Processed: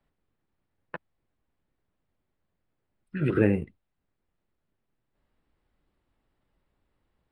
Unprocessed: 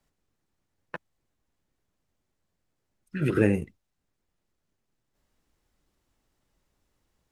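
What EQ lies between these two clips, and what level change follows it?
boxcar filter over 7 samples; 0.0 dB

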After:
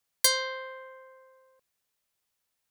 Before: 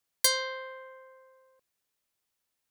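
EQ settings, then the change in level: peaking EQ 320 Hz -4 dB 0.59 oct; +1.5 dB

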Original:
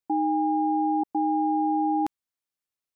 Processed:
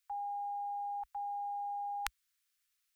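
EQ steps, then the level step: inverse Chebyshev band-stop 170–450 Hz, stop band 70 dB; peaking EQ 240 Hz -11.5 dB 1.3 oct; +10.0 dB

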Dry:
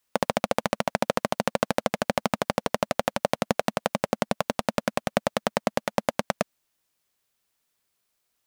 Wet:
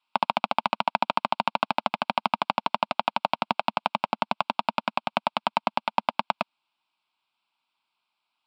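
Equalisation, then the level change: cabinet simulation 280–6400 Hz, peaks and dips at 920 Hz +8 dB, 1.7 kHz +4 dB, 2.5 kHz +5 dB; static phaser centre 1.8 kHz, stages 6; +2.0 dB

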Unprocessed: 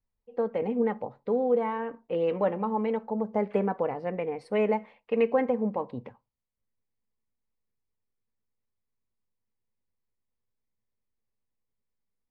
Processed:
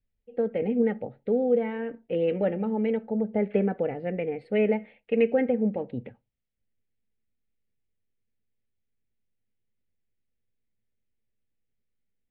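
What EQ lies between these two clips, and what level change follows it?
distance through air 130 m; static phaser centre 2.5 kHz, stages 4; +4.5 dB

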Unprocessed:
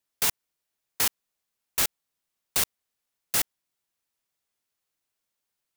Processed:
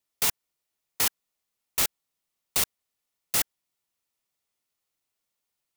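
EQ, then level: band-stop 1.6 kHz, Q 11; 0.0 dB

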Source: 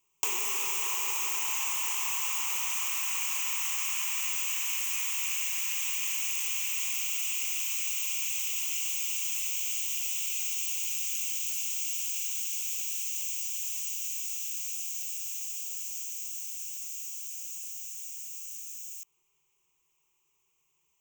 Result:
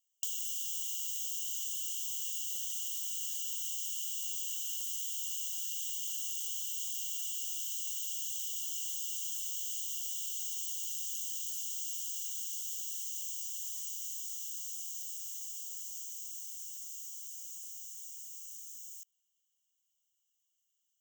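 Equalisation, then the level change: brick-wall FIR high-pass 2.8 kHz; -6.0 dB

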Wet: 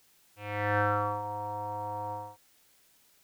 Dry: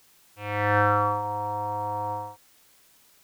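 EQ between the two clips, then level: peaking EQ 1.1 kHz -3.5 dB 0.32 oct; -5.5 dB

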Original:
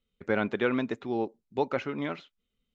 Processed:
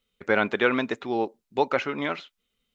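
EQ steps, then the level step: bass shelf 380 Hz -10.5 dB; +8.5 dB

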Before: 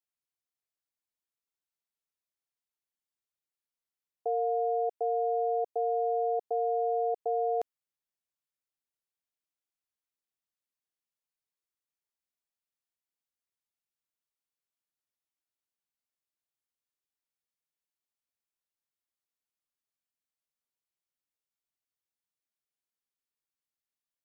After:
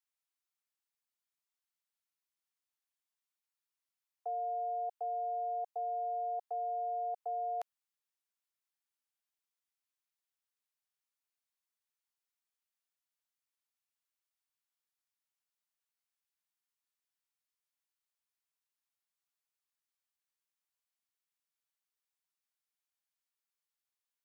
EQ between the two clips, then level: high-pass 770 Hz 24 dB/octave; 0.0 dB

